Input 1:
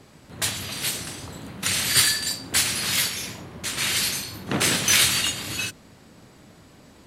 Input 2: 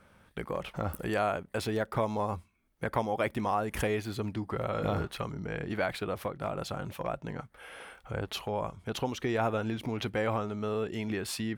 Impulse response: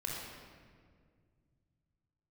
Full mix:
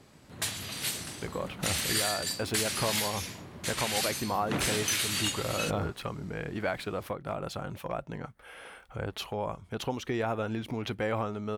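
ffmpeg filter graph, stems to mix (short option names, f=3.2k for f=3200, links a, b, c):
-filter_complex "[0:a]volume=-6dB[a];[1:a]adelay=850,volume=-0.5dB[b];[a][b]amix=inputs=2:normalize=0,alimiter=limit=-17.5dB:level=0:latency=1:release=236"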